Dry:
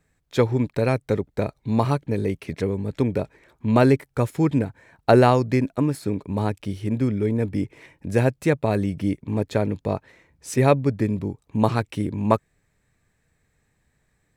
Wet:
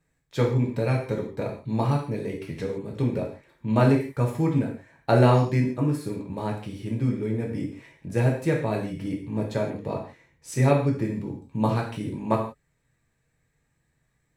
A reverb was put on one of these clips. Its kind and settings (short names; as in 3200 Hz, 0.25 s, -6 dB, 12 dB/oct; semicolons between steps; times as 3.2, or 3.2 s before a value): non-linear reverb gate 0.19 s falling, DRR -1.5 dB; gain -7.5 dB